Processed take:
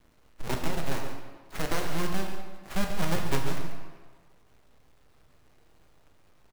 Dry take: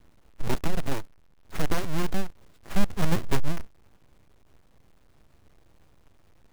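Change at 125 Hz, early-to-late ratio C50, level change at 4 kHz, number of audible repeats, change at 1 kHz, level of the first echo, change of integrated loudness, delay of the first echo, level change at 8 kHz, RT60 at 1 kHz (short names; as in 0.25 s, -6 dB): -3.0 dB, 4.0 dB, +1.0 dB, 1, +0.5 dB, -10.5 dB, -1.5 dB, 0.14 s, +1.0 dB, 1.5 s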